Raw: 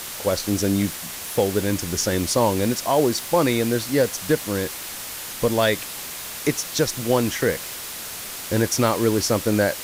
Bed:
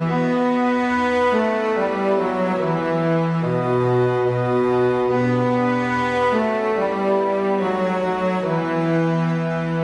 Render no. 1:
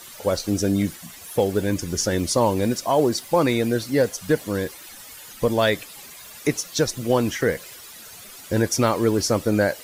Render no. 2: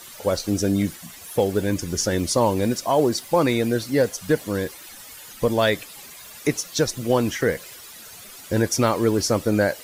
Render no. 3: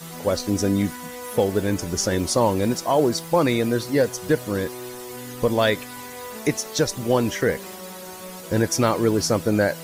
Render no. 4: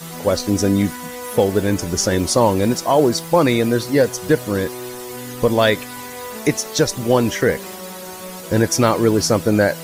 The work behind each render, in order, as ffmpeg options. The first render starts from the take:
-af "afftdn=nr=13:nf=-34"
-af anull
-filter_complex "[1:a]volume=-18.5dB[a];[0:a][a]amix=inputs=2:normalize=0"
-af "volume=4.5dB"

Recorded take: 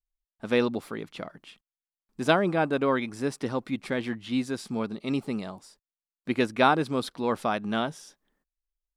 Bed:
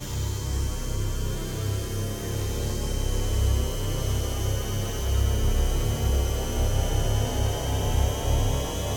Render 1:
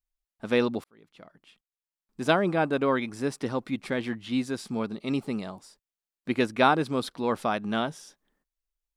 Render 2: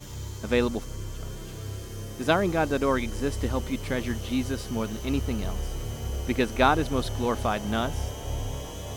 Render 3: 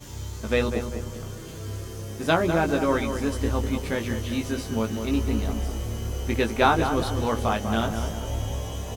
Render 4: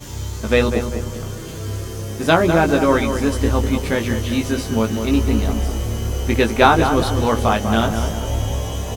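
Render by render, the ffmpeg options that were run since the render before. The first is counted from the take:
-filter_complex "[0:a]asplit=2[a][b];[a]atrim=end=0.84,asetpts=PTS-STARTPTS,afade=t=out:st=0.836:d=0.004:c=hsin[c];[b]atrim=start=0.84,asetpts=PTS-STARTPTS,afade=t=in:d=1.62[d];[c][d]concat=n=2:v=0:a=1"
-filter_complex "[1:a]volume=-8dB[a];[0:a][a]amix=inputs=2:normalize=0"
-filter_complex "[0:a]asplit=2[a][b];[b]adelay=18,volume=-4.5dB[c];[a][c]amix=inputs=2:normalize=0,asplit=2[d][e];[e]adelay=198,lowpass=f=2k:p=1,volume=-7.5dB,asplit=2[f][g];[g]adelay=198,lowpass=f=2k:p=1,volume=0.47,asplit=2[h][i];[i]adelay=198,lowpass=f=2k:p=1,volume=0.47,asplit=2[j][k];[k]adelay=198,lowpass=f=2k:p=1,volume=0.47,asplit=2[l][m];[m]adelay=198,lowpass=f=2k:p=1,volume=0.47[n];[f][h][j][l][n]amix=inputs=5:normalize=0[o];[d][o]amix=inputs=2:normalize=0"
-af "volume=7.5dB,alimiter=limit=-1dB:level=0:latency=1"

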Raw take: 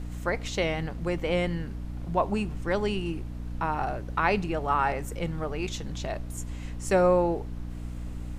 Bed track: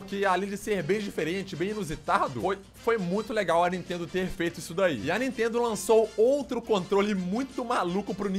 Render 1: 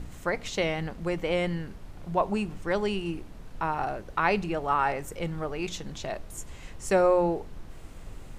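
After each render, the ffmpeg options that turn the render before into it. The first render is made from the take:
-af "bandreject=f=60:t=h:w=4,bandreject=f=120:t=h:w=4,bandreject=f=180:t=h:w=4,bandreject=f=240:t=h:w=4,bandreject=f=300:t=h:w=4"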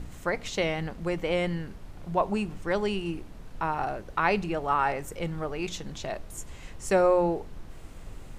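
-af anull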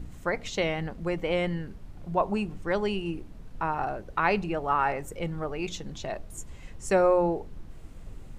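-af "afftdn=nr=6:nf=-45"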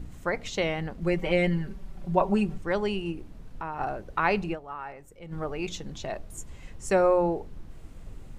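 -filter_complex "[0:a]asettb=1/sr,asplit=3[a][b][c];[a]atrim=end=1.014[d];[b]atrim=start=1.01:end=2.58,asetpts=PTS-STARTPTS,afade=t=in:d=0.004:c=qsin,afade=t=out:st=1.566:d=0.004:c=qsin,aecho=1:1:5.2:0.87,atrim=end_sample=69237[e];[c]atrim=start=2.576[f];[d][e]acrossfade=d=0.004:c1=hsin:c2=qsin[g];[g][f]acrossfade=d=0.004:c1=qsin:c2=hsin,asettb=1/sr,asplit=3[h][i][j];[h]atrim=end=3.124[k];[i]atrim=start=3.12:end=3.8,asetpts=PTS-STARTPTS,afade=t=in:d=0.004:c=qsin,afade=t=out:st=0.676:d=0.004:c=qsin,acompressor=threshold=-34dB:ratio=2:attack=3.2:release=140:knee=1:detection=peak[l];[j]atrim=start=3.796[m];[k][l]acrossfade=d=0.004:c1=hsin:c2=qsin[n];[n][m]acrossfade=d=0.004:c1=qsin:c2=hsin,asplit=3[o][p][q];[o]atrim=end=4.77,asetpts=PTS-STARTPTS,afade=t=out:st=4.53:d=0.24:c=exp:silence=0.223872[r];[p]atrim=start=4.77:end=5.09,asetpts=PTS-STARTPTS,volume=-13dB[s];[q]atrim=start=5.09,asetpts=PTS-STARTPTS,afade=t=in:d=0.24:c=exp:silence=0.223872[t];[r][s][t]concat=n=3:v=0:a=1"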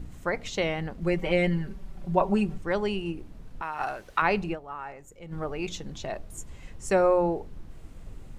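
-filter_complex "[0:a]asettb=1/sr,asplit=3[a][b][c];[a]atrim=end=3.624[d];[b]atrim=start=3.62:end=4.22,asetpts=PTS-STARTPTS,afade=t=in:d=0.004:c=qsin,afade=t=out:st=0.596:d=0.004:c=qsin,tiltshelf=f=820:g=-9[e];[c]atrim=start=4.216[f];[d][e]acrossfade=d=0.004:c1=hsin:c2=qsin[g];[g][f]acrossfade=d=0.004:c1=qsin:c2=hsin,asettb=1/sr,asplit=3[h][i][j];[h]atrim=end=4.744[k];[i]atrim=start=4.74:end=5.25,asetpts=PTS-STARTPTS,afade=t=in:d=0.004:c=qsin,afade=t=out:st=0.506:d=0.004:c=qsin,equalizer=f=6.9k:w=5.6:g=11.5[l];[j]atrim=start=5.246[m];[k][l]acrossfade=d=0.004:c1=hsin:c2=qsin[n];[n][m]acrossfade=d=0.004:c1=qsin:c2=hsin"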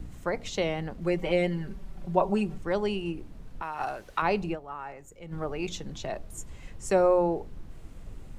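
-filter_complex "[0:a]acrossover=split=220|1300|2500[a][b][c][d];[a]alimiter=level_in=7dB:limit=-24dB:level=0:latency=1,volume=-7dB[e];[c]acompressor=threshold=-47dB:ratio=6[f];[e][b][f][d]amix=inputs=4:normalize=0"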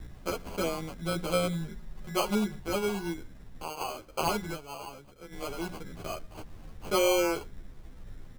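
-filter_complex "[0:a]acrusher=samples=24:mix=1:aa=0.000001,asplit=2[a][b];[b]adelay=11.5,afreqshift=-0.41[c];[a][c]amix=inputs=2:normalize=1"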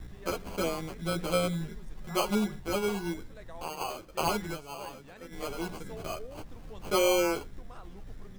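-filter_complex "[1:a]volume=-24dB[a];[0:a][a]amix=inputs=2:normalize=0"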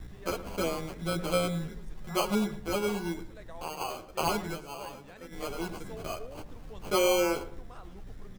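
-filter_complex "[0:a]asplit=2[a][b];[b]adelay=110,lowpass=f=1.6k:p=1,volume=-13dB,asplit=2[c][d];[d]adelay=110,lowpass=f=1.6k:p=1,volume=0.35,asplit=2[e][f];[f]adelay=110,lowpass=f=1.6k:p=1,volume=0.35[g];[a][c][e][g]amix=inputs=4:normalize=0"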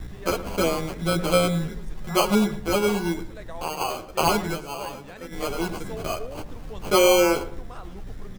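-af "volume=8dB"

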